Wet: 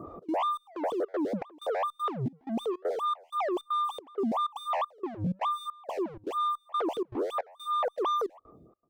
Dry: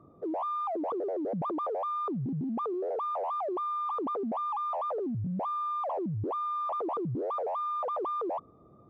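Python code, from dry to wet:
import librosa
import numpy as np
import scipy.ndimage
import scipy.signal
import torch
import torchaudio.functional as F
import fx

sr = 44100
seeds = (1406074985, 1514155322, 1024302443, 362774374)

p1 = fx.fade_out_tail(x, sr, length_s=1.32)
p2 = fx.low_shelf(p1, sr, hz=93.0, db=6.0)
p3 = fx.over_compress(p2, sr, threshold_db=-38.0, ratio=-0.5)
p4 = p2 + (p3 * 10.0 ** (1.0 / 20.0))
p5 = np.clip(p4, -10.0 ** (-31.5 / 20.0), 10.0 ** (-31.5 / 20.0))
p6 = fx.step_gate(p5, sr, bpm=158, pattern='xx.xxx..x', floor_db=-24.0, edge_ms=4.5)
p7 = fx.stagger_phaser(p6, sr, hz=3.0)
y = p7 * 10.0 ** (5.5 / 20.0)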